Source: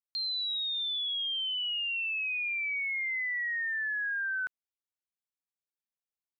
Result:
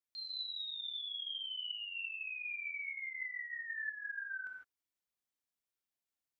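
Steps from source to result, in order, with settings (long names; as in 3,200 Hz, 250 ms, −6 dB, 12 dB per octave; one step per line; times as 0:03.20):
brickwall limiter −40.5 dBFS, peak gain reduction 11 dB
convolution reverb, pre-delay 3 ms, DRR −1 dB
level −2.5 dB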